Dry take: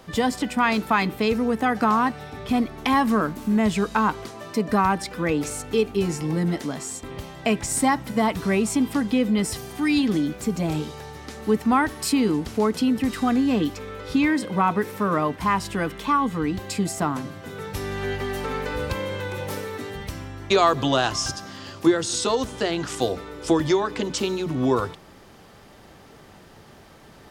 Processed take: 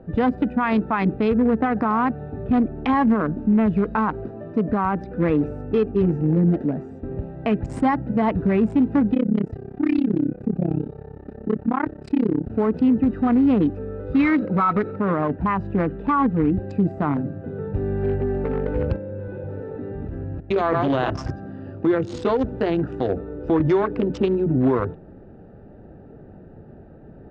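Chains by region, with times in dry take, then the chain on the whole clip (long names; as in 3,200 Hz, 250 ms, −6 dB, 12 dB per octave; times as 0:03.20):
0:09.14–0:12.50: high-pass filter 77 Hz + amplitude modulation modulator 33 Hz, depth 95%
0:14.13–0:14.96: variable-slope delta modulation 32 kbit/s + hollow resonant body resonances 1,300/2,200/3,900 Hz, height 16 dB, ringing for 35 ms
0:18.96–0:21.10: delay that plays each chunk backwards 160 ms, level −5 dB + output level in coarse steps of 12 dB
whole clip: adaptive Wiener filter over 41 samples; low-pass filter 1,900 Hz 12 dB per octave; brickwall limiter −19 dBFS; level +7.5 dB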